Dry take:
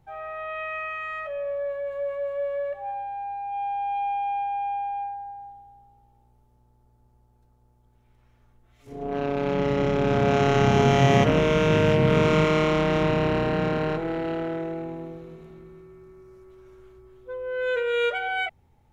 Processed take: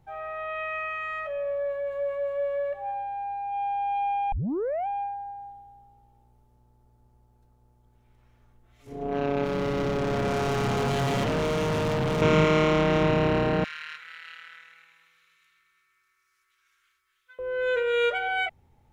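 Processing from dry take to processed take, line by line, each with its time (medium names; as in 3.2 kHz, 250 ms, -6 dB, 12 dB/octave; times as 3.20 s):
4.32 s: tape start 0.55 s
9.44–12.22 s: hard clipper -24 dBFS
13.64–17.39 s: inverse Chebyshev high-pass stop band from 770 Hz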